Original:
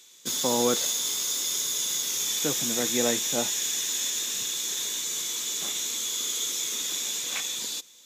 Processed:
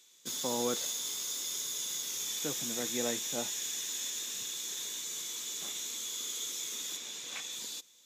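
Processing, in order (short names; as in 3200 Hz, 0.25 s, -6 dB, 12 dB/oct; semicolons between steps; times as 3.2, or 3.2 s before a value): 6.96–7.51 high shelf 6300 Hz -> 12000 Hz -10 dB; gain -8.5 dB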